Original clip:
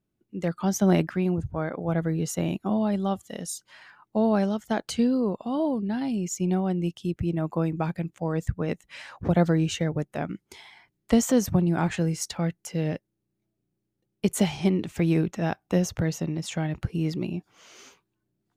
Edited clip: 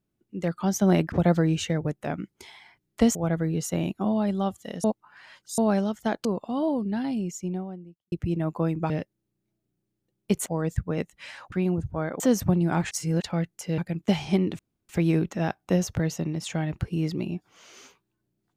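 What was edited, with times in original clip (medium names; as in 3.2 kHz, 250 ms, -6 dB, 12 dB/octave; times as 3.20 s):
1.12–1.80 s: swap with 9.23–11.26 s
3.49–4.23 s: reverse
4.90–5.22 s: delete
5.93–7.09 s: studio fade out
7.87–8.17 s: swap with 12.84–14.40 s
11.97–12.28 s: reverse
14.91 s: insert room tone 0.30 s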